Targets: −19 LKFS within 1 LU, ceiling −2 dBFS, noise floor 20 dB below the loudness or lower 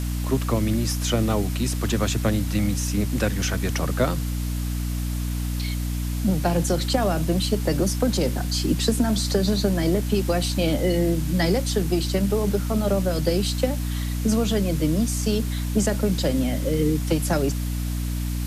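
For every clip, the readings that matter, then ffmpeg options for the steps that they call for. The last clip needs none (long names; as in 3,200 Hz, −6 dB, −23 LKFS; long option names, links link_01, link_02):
mains hum 60 Hz; hum harmonics up to 300 Hz; level of the hum −24 dBFS; background noise floor −27 dBFS; target noise floor −44 dBFS; integrated loudness −23.5 LKFS; sample peak −7.5 dBFS; target loudness −19.0 LKFS
→ -af "bandreject=frequency=60:width_type=h:width=4,bandreject=frequency=120:width_type=h:width=4,bandreject=frequency=180:width_type=h:width=4,bandreject=frequency=240:width_type=h:width=4,bandreject=frequency=300:width_type=h:width=4"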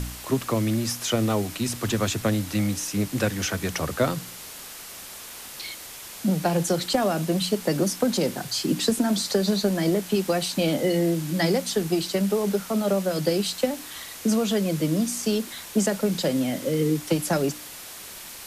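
mains hum none found; background noise floor −40 dBFS; target noise floor −45 dBFS
→ -af "afftdn=noise_reduction=6:noise_floor=-40"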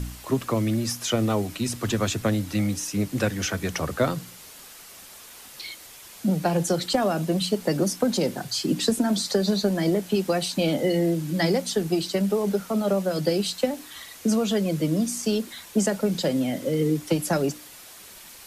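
background noise floor −45 dBFS; integrated loudness −25.0 LKFS; sample peak −9.0 dBFS; target loudness −19.0 LKFS
→ -af "volume=6dB"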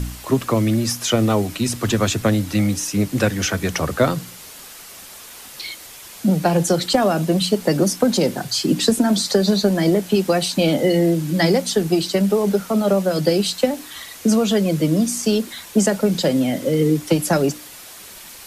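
integrated loudness −19.0 LKFS; sample peak −3.0 dBFS; background noise floor −39 dBFS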